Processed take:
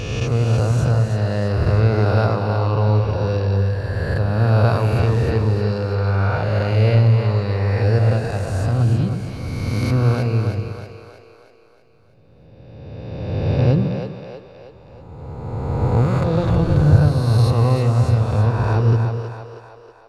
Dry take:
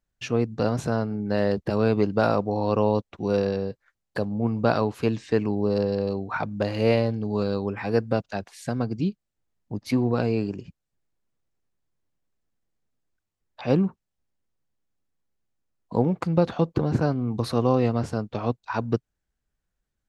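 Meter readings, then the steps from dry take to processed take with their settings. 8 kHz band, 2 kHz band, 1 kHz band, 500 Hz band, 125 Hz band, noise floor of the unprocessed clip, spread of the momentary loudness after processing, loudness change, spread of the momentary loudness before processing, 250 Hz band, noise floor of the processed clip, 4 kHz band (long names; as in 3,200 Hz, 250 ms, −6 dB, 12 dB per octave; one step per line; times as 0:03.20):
can't be measured, +6.0 dB, +4.0 dB, +2.0 dB, +14.0 dB, −82 dBFS, 12 LU, +7.0 dB, 8 LU, +1.5 dB, −48 dBFS, +5.5 dB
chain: peak hold with a rise ahead of every peak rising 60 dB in 2.30 s
low shelf with overshoot 150 Hz +13.5 dB, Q 1.5
echo with a time of its own for lows and highs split 390 Hz, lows 121 ms, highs 319 ms, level −6 dB
level −2 dB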